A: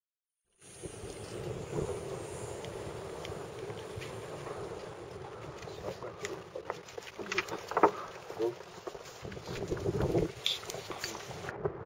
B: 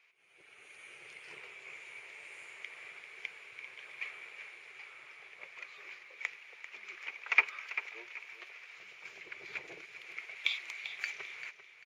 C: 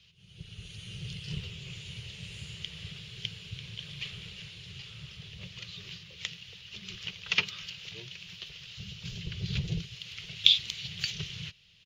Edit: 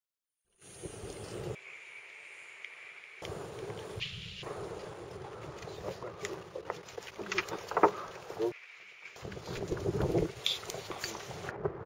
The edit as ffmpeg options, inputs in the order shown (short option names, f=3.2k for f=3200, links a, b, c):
-filter_complex "[1:a]asplit=2[a][b];[0:a]asplit=4[c][d][e][f];[c]atrim=end=1.552[g];[a]atrim=start=1.548:end=3.222[h];[d]atrim=start=3.218:end=4.002[i];[2:a]atrim=start=3.998:end=4.432[j];[e]atrim=start=4.428:end=8.522[k];[b]atrim=start=8.518:end=9.162[l];[f]atrim=start=9.158[m];[g][h]acrossfade=d=0.004:c1=hsin:c2=hsin[n];[n][i]acrossfade=d=0.004:c1=hsin:c2=hsin[o];[o][j]acrossfade=d=0.004:c1=hsin:c2=hsin[p];[p][k]acrossfade=d=0.004:c1=hsin:c2=hsin[q];[q][l]acrossfade=d=0.004:c1=hsin:c2=hsin[r];[r][m]acrossfade=d=0.004:c1=hsin:c2=hsin"